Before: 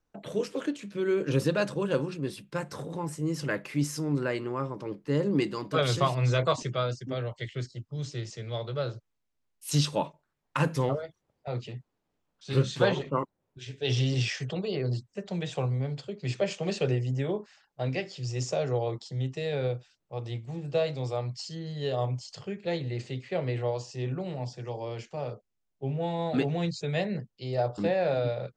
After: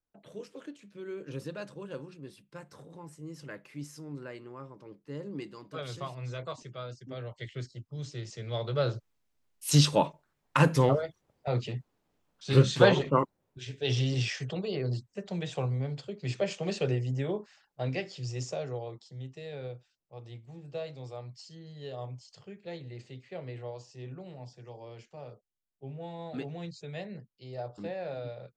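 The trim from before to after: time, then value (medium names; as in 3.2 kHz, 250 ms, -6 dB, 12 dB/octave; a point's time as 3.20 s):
6.68 s -13 dB
7.49 s -4 dB
8.18 s -4 dB
8.89 s +4 dB
13.15 s +4 dB
14.01 s -2 dB
18.20 s -2 dB
18.95 s -10.5 dB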